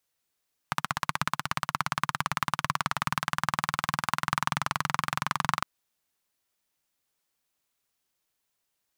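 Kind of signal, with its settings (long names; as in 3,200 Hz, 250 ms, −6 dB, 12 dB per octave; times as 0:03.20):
pulse-train model of a single-cylinder engine, changing speed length 4.91 s, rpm 1,900, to 2,700, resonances 150/1,100 Hz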